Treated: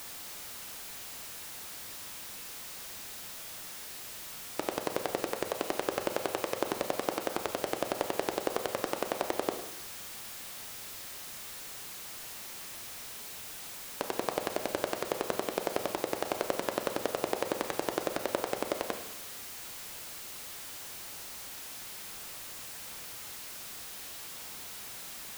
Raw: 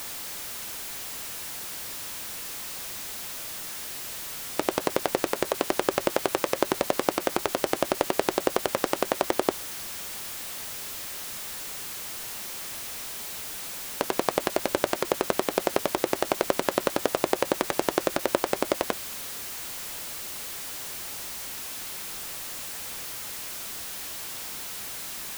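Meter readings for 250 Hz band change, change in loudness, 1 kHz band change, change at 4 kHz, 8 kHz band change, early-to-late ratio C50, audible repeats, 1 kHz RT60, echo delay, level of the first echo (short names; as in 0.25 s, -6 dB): -7.0 dB, -7.0 dB, -6.5 dB, -6.5 dB, -7.5 dB, 8.0 dB, none, 1.0 s, none, none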